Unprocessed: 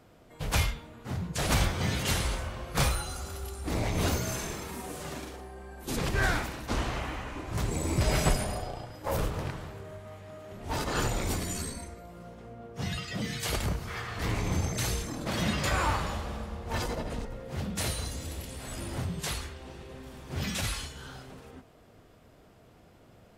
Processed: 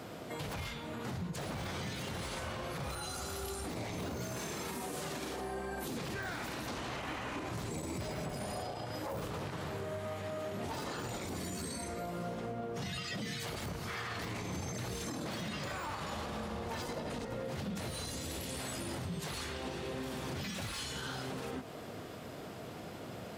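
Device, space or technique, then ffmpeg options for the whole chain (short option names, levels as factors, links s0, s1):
broadcast voice chain: -af "highpass=120,deesser=0.9,acompressor=threshold=0.00355:ratio=4,equalizer=f=4100:t=o:w=0.77:g=2,alimiter=level_in=9.44:limit=0.0631:level=0:latency=1:release=32,volume=0.106,volume=4.22"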